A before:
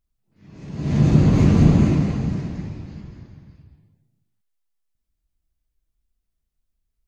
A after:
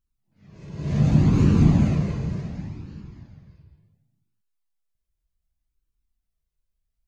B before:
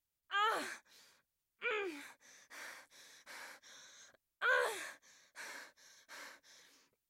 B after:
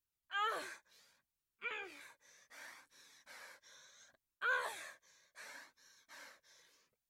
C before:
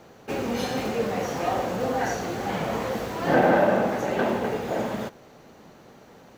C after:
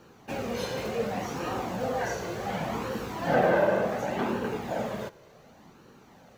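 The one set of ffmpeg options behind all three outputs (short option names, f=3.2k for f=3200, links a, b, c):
-af "flanger=delay=0.7:depth=1.3:regen=-40:speed=0.68:shape=sinusoidal"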